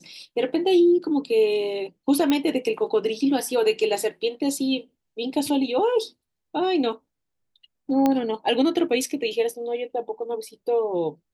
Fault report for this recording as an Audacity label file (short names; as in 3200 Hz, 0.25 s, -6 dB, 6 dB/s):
2.300000	2.300000	pop -9 dBFS
8.060000	8.060000	pop -9 dBFS